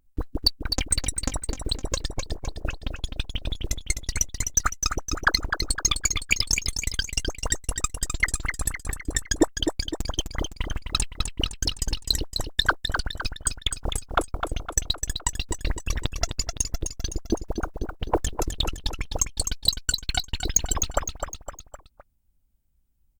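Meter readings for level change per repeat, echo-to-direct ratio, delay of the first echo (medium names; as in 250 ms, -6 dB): -6.0 dB, -5.5 dB, 256 ms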